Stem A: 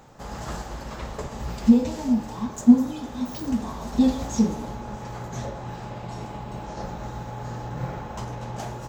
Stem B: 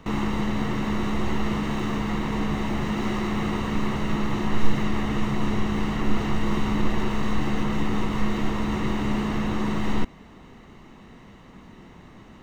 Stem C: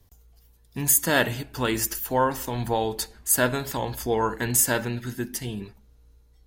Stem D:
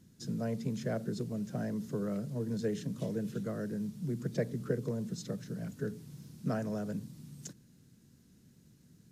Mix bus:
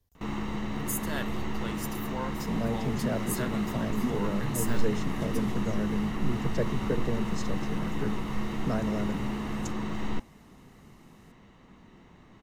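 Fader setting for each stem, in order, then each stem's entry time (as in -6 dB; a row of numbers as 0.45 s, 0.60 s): -19.0 dB, -7.5 dB, -14.5 dB, +3.0 dB; 1.35 s, 0.15 s, 0.00 s, 2.20 s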